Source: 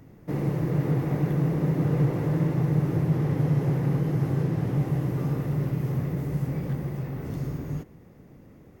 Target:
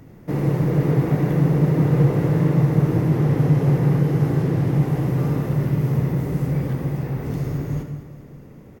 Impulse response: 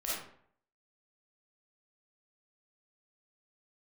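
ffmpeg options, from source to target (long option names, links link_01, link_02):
-filter_complex "[0:a]aecho=1:1:204|408|612|816|1020|1224:0.2|0.11|0.0604|0.0332|0.0183|0.01,asplit=2[link_01][link_02];[1:a]atrim=start_sample=2205,asetrate=31752,aresample=44100[link_03];[link_02][link_03]afir=irnorm=-1:irlink=0,volume=-10.5dB[link_04];[link_01][link_04]amix=inputs=2:normalize=0,volume=3.5dB"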